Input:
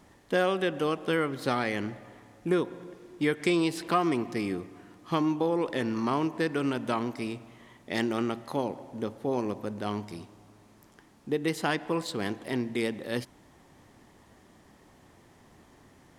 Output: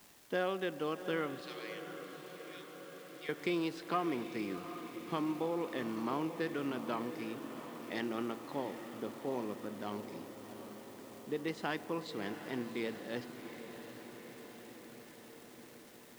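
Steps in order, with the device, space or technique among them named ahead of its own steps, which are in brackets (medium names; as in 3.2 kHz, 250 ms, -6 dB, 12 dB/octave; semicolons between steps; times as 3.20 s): 78 rpm shellac record (band-pass 150–5000 Hz; crackle 380 per s -40 dBFS; white noise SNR 24 dB); 1.41–3.29 s: Chebyshev high-pass 3 kHz, order 2; echo that smears into a reverb 714 ms, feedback 66%, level -12 dB; echo that smears into a reverb 857 ms, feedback 70%, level -15 dB; trim -8.5 dB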